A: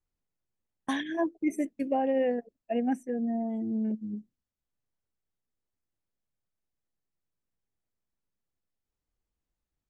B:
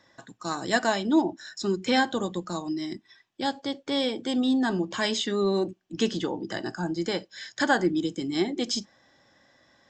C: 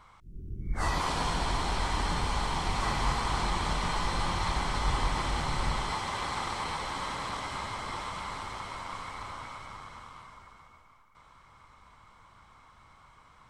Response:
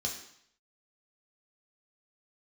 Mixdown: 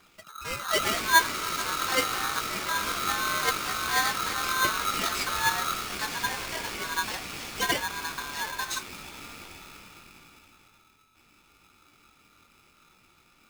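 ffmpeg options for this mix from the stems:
-filter_complex "[0:a]volume=-1dB[link_01];[1:a]aphaser=in_gain=1:out_gain=1:delay=4.3:decay=0.73:speed=0.86:type=triangular,volume=-7.5dB,asplit=2[link_02][link_03];[2:a]flanger=delay=17:depth=7.2:speed=0.77,acrusher=bits=3:mode=log:mix=0:aa=0.000001,adynamicequalizer=threshold=0.00447:dfrequency=2100:dqfactor=0.7:tfrequency=2100:tqfactor=0.7:attack=5:release=100:ratio=0.375:range=2.5:mode=boostabove:tftype=highshelf,volume=-1dB,asplit=2[link_04][link_05];[link_05]volume=-12.5dB[link_06];[link_03]apad=whole_len=436185[link_07];[link_01][link_07]sidechaincompress=threshold=-42dB:ratio=8:attack=16:release=312[link_08];[3:a]atrim=start_sample=2205[link_09];[link_06][link_09]afir=irnorm=-1:irlink=0[link_10];[link_08][link_02][link_04][link_10]amix=inputs=4:normalize=0,aeval=exprs='val(0)*sgn(sin(2*PI*1300*n/s))':channel_layout=same"

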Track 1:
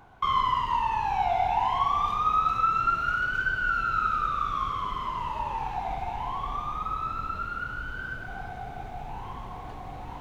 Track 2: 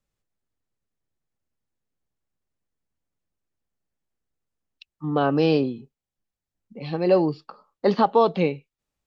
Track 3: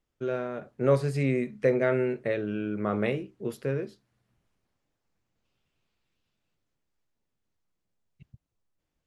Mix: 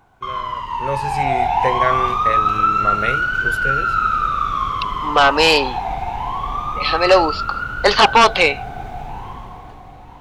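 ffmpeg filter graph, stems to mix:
ffmpeg -i stem1.wav -i stem2.wav -i stem3.wav -filter_complex "[0:a]volume=-1.5dB[link_01];[1:a]highpass=1100,aeval=exprs='0.224*sin(PI/2*2.82*val(0)/0.224)':channel_layout=same,volume=-2dB[link_02];[2:a]equalizer=frequency=260:width=0.49:gain=-14,volume=1.5dB[link_03];[link_01][link_02][link_03]amix=inputs=3:normalize=0,dynaudnorm=framelen=120:gausssize=17:maxgain=11.5dB" out.wav

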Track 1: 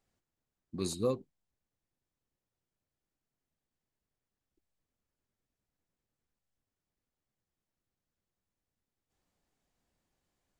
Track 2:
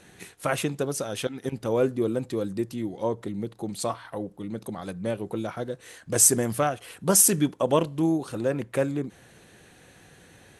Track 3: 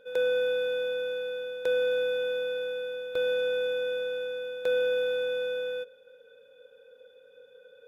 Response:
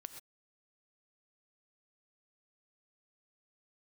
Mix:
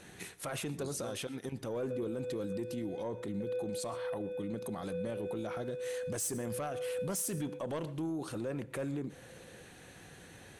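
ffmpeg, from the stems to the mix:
-filter_complex "[0:a]volume=-9.5dB[link_01];[1:a]asoftclip=type=tanh:threshold=-15.5dB,acompressor=threshold=-37dB:ratio=1.5,volume=-2.5dB,asplit=3[link_02][link_03][link_04];[link_03]volume=-6.5dB[link_05];[2:a]asplit=3[link_06][link_07][link_08];[link_06]bandpass=frequency=530:width_type=q:width=8,volume=0dB[link_09];[link_07]bandpass=frequency=1840:width_type=q:width=8,volume=-6dB[link_10];[link_08]bandpass=frequency=2480:width_type=q:width=8,volume=-9dB[link_11];[link_09][link_10][link_11]amix=inputs=3:normalize=0,adelay=1750,volume=-2dB[link_12];[link_04]apad=whole_len=424592[link_13];[link_12][link_13]sidechaincompress=threshold=-40dB:ratio=8:attack=16:release=309[link_14];[3:a]atrim=start_sample=2205[link_15];[link_05][link_15]afir=irnorm=-1:irlink=0[link_16];[link_01][link_02][link_14][link_16]amix=inputs=4:normalize=0,alimiter=level_in=6dB:limit=-24dB:level=0:latency=1:release=21,volume=-6dB"

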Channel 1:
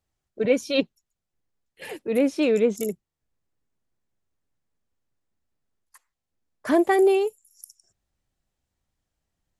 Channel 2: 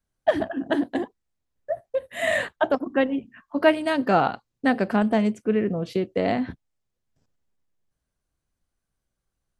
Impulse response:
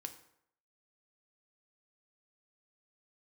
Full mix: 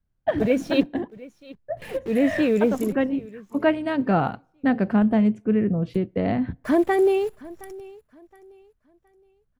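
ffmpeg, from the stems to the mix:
-filter_complex "[0:a]aemphasis=mode=production:type=cd,acrusher=bits=7:dc=4:mix=0:aa=0.000001,volume=-2.5dB,asplit=4[link_01][link_02][link_03][link_04];[link_02]volume=-19.5dB[link_05];[link_03]volume=-20dB[link_06];[1:a]volume=-4dB,asplit=2[link_07][link_08];[link_08]volume=-17.5dB[link_09];[link_04]apad=whole_len=423138[link_10];[link_07][link_10]sidechaincompress=threshold=-23dB:ratio=8:attack=16:release=409[link_11];[2:a]atrim=start_sample=2205[link_12];[link_05][link_09]amix=inputs=2:normalize=0[link_13];[link_13][link_12]afir=irnorm=-1:irlink=0[link_14];[link_06]aecho=0:1:718|1436|2154|2872:1|0.3|0.09|0.027[link_15];[link_01][link_11][link_14][link_15]amix=inputs=4:normalize=0,bass=frequency=250:gain=11,treble=frequency=4000:gain=-12"

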